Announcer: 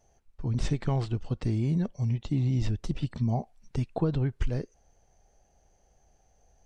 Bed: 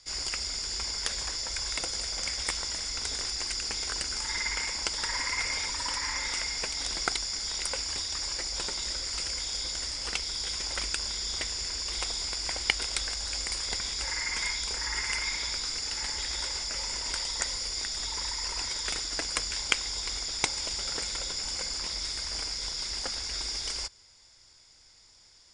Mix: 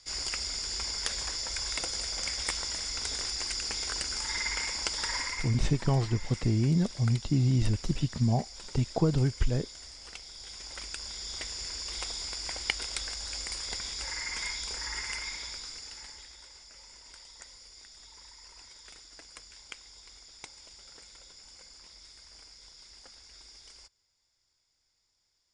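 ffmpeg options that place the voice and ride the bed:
-filter_complex "[0:a]adelay=5000,volume=1.19[s0];[1:a]volume=2.51,afade=t=out:st=5.16:d=0.37:silence=0.251189,afade=t=in:st=10.36:d=1.32:silence=0.354813,afade=t=out:st=14.88:d=1.48:silence=0.188365[s1];[s0][s1]amix=inputs=2:normalize=0"

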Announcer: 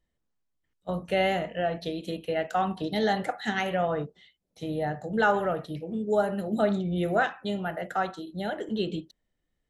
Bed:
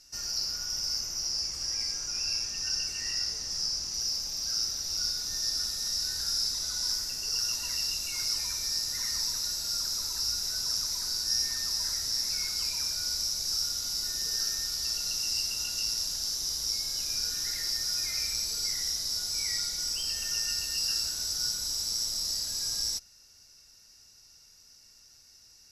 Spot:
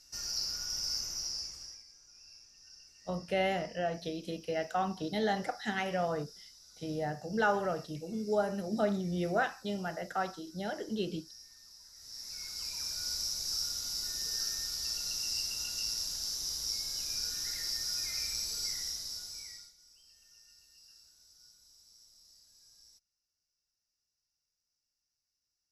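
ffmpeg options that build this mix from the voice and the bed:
-filter_complex "[0:a]adelay=2200,volume=0.531[s0];[1:a]volume=6.68,afade=t=out:st=1.1:d=0.73:silence=0.0891251,afade=t=in:st=11.93:d=1.18:silence=0.1,afade=t=out:st=18.64:d=1.1:silence=0.0562341[s1];[s0][s1]amix=inputs=2:normalize=0"

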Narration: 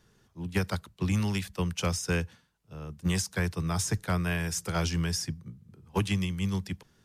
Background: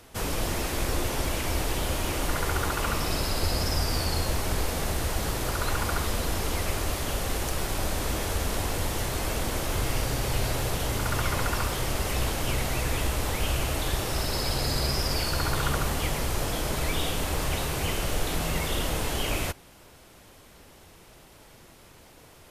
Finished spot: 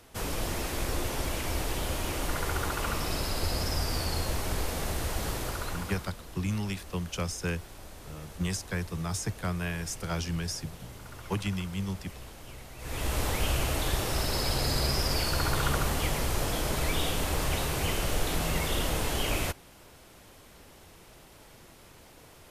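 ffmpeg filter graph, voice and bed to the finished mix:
-filter_complex "[0:a]adelay=5350,volume=0.668[s0];[1:a]volume=4.73,afade=t=out:st=5.33:d=0.78:silence=0.188365,afade=t=in:st=12.78:d=0.4:silence=0.141254[s1];[s0][s1]amix=inputs=2:normalize=0"

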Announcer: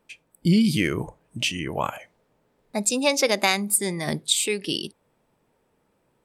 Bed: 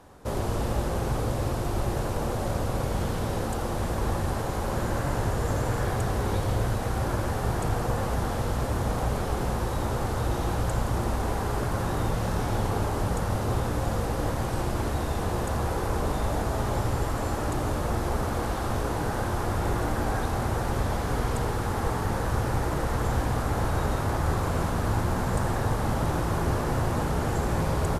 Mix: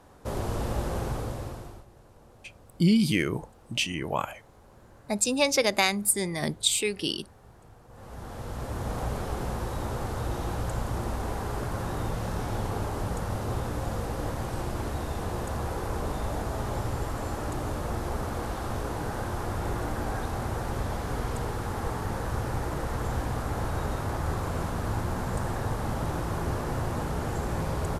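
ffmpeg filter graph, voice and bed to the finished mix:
-filter_complex "[0:a]adelay=2350,volume=0.75[s0];[1:a]volume=9.44,afade=t=out:st=0.98:d=0.87:silence=0.0668344,afade=t=in:st=7.89:d=1.11:silence=0.0794328[s1];[s0][s1]amix=inputs=2:normalize=0"

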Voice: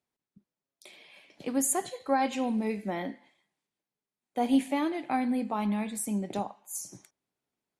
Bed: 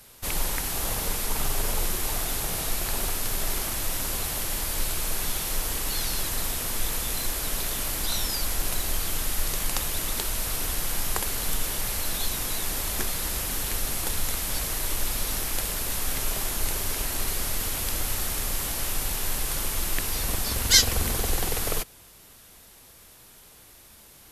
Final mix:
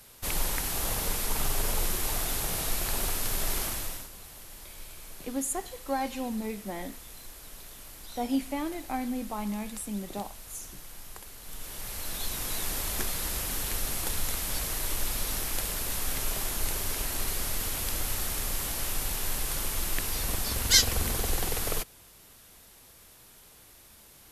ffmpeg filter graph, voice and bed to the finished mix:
-filter_complex "[0:a]adelay=3800,volume=0.631[s0];[1:a]volume=4.22,afade=t=out:st=3.64:d=0.45:silence=0.16788,afade=t=in:st=11.43:d=1.18:silence=0.188365[s1];[s0][s1]amix=inputs=2:normalize=0"

